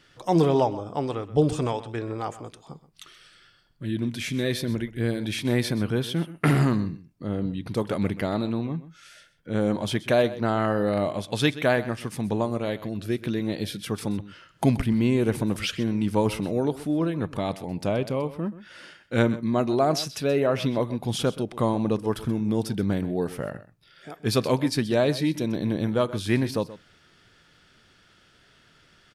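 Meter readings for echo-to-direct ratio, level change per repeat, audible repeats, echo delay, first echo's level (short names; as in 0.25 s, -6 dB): -16.0 dB, no steady repeat, 1, 0.128 s, -16.0 dB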